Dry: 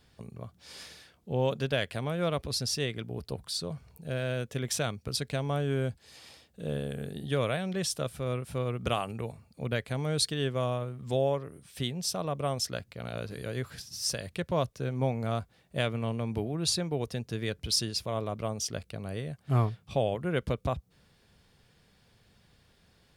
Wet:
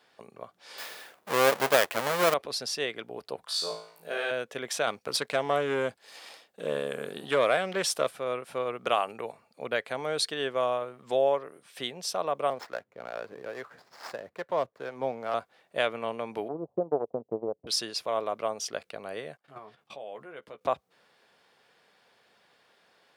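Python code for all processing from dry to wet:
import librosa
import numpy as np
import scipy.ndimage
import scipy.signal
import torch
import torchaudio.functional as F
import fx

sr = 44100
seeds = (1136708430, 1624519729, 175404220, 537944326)

y = fx.chain(x, sr, fx.halfwave_hold(),
    fx.high_shelf(hz=10000.0, db=11.5), at=(0.78, 2.34))
y = fx.chain(y, sr, fx.highpass(hz=440.0, slope=6),
    fx.room_flutter(wall_m=3.1, rt60_s=0.51), at=(3.45, 4.31))
y = fx.chain(y, sr, fx.high_shelf(hz=7800.0, db=5.5),
    fx.leveller(passes=1),
    fx.doppler_dist(depth_ms=0.14), at=(4.87, 8.11))
y = fx.chain(y, sr, fx.median_filter(points=15),
    fx.harmonic_tremolo(hz=2.3, depth_pct=50, crossover_hz=530.0), at=(12.5, 15.34))
y = fx.chain(y, sr, fx.steep_lowpass(hz=780.0, slope=36),
    fx.transient(attack_db=9, sustain_db=-11), at=(16.48, 17.67))
y = fx.chain(y, sr, fx.level_steps(step_db=22),
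    fx.doubler(ms=14.0, db=-7.5), at=(19.37, 20.61))
y = scipy.signal.sosfilt(scipy.signal.butter(2, 560.0, 'highpass', fs=sr, output='sos'), y)
y = fx.high_shelf(y, sr, hz=3300.0, db=-12.0)
y = F.gain(torch.from_numpy(y), 7.5).numpy()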